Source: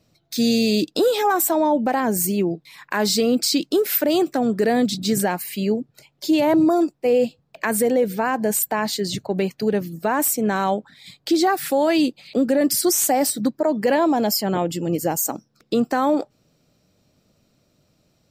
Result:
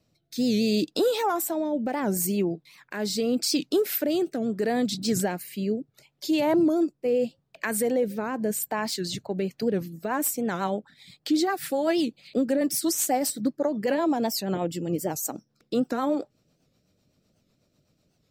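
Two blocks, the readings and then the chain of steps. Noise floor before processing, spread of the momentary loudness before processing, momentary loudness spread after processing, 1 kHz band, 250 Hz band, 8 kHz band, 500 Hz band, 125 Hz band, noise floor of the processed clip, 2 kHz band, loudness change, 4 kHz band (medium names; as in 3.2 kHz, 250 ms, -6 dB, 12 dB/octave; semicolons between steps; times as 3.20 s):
-65 dBFS, 7 LU, 7 LU, -8.0 dB, -5.5 dB, -6.5 dB, -6.0 dB, -4.5 dB, -72 dBFS, -7.5 dB, -6.0 dB, -6.5 dB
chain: rotary cabinet horn 0.75 Hz, later 8 Hz, at 9.21 s; warped record 78 rpm, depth 160 cents; trim -4 dB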